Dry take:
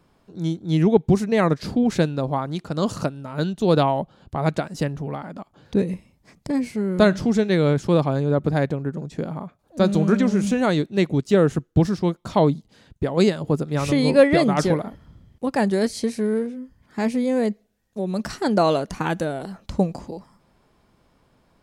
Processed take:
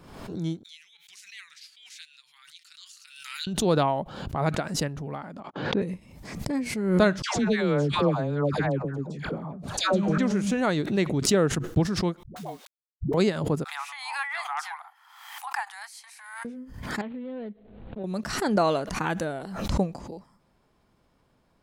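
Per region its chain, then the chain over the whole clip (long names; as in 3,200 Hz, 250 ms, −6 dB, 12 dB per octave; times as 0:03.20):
0:00.63–0:03.47: flanger 1.7 Hz, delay 5 ms, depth 1.2 ms, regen +60% + inverse Chebyshev high-pass filter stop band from 660 Hz, stop band 60 dB
0:05.40–0:05.82: band-pass filter 180–3,000 Hz + noise gate −58 dBFS, range −38 dB
0:07.22–0:10.18: low-pass filter 8,600 Hz + all-pass dispersion lows, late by 141 ms, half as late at 1,000 Hz
0:12.23–0:13.14: tuned comb filter 740 Hz, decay 0.16 s, harmonics odd, mix 90% + bit-depth reduction 8 bits, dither none + all-pass dispersion highs, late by 110 ms, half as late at 300 Hz
0:13.64–0:16.45: Butterworth high-pass 770 Hz 96 dB per octave + parametric band 4,900 Hz −8 dB 1.9 octaves + one half of a high-frequency compander encoder only
0:17.01–0:18.04: running median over 25 samples + Butterworth low-pass 4,000 Hz 72 dB per octave + downward compressor 3 to 1, threshold −30 dBFS
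whole clip: dynamic equaliser 1,500 Hz, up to +4 dB, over −36 dBFS, Q 0.73; background raised ahead of every attack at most 55 dB per second; level −6 dB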